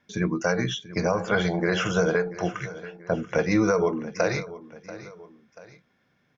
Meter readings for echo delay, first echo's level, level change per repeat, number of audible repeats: 0.686 s, -16.5 dB, -6.5 dB, 2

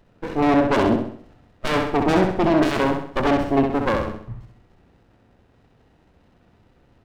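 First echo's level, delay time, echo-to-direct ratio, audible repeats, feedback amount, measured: -5.0 dB, 65 ms, -4.0 dB, 5, 45%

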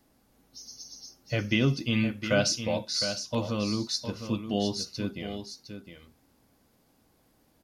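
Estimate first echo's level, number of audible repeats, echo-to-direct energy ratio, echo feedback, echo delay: -9.0 dB, 1, -9.0 dB, no steady repeat, 0.709 s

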